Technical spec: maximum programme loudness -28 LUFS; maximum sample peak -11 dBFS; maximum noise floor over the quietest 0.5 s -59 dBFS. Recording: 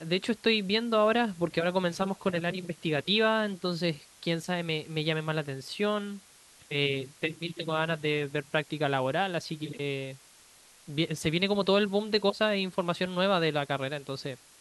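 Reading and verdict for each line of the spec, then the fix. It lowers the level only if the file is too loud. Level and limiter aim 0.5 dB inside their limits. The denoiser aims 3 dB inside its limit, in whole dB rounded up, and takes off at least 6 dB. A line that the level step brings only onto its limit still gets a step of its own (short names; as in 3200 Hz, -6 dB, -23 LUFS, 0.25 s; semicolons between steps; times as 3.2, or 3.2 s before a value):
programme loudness -29.5 LUFS: OK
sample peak -11.5 dBFS: OK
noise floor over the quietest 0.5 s -57 dBFS: fail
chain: denoiser 6 dB, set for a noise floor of -57 dBFS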